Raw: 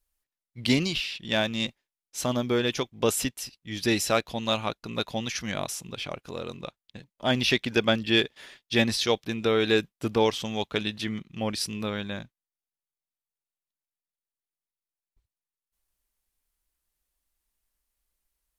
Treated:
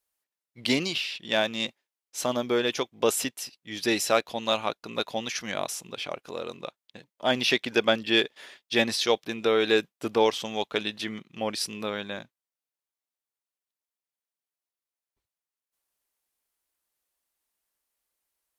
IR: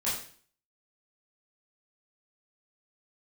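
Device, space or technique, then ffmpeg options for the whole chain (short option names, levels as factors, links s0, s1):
filter by subtraction: -filter_complex "[0:a]asplit=2[s0][s1];[s1]lowpass=530,volume=-1[s2];[s0][s2]amix=inputs=2:normalize=0"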